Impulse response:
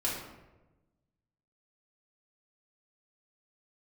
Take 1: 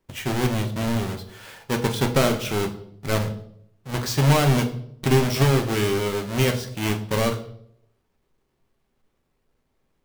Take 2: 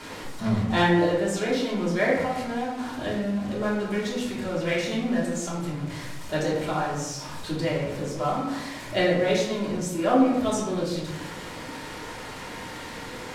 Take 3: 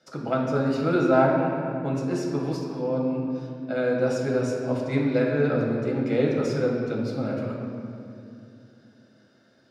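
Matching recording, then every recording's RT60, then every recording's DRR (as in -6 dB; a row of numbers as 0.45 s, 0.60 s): 2; 0.70 s, 1.1 s, 2.6 s; 3.5 dB, -6.5 dB, -2.5 dB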